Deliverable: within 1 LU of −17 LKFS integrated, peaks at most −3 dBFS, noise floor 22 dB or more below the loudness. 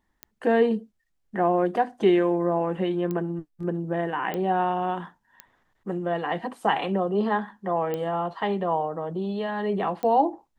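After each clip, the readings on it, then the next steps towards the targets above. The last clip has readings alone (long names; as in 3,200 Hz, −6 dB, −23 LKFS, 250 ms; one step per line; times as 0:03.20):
number of clicks 6; integrated loudness −26.0 LKFS; sample peak −9.5 dBFS; target loudness −17.0 LKFS
→ click removal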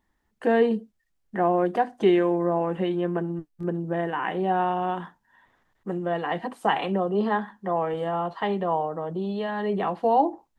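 number of clicks 0; integrated loudness −26.0 LKFS; sample peak −9.5 dBFS; target loudness −17.0 LKFS
→ level +9 dB
brickwall limiter −3 dBFS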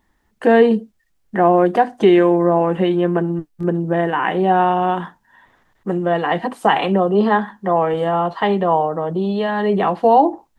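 integrated loudness −17.0 LKFS; sample peak −3.0 dBFS; background noise floor −64 dBFS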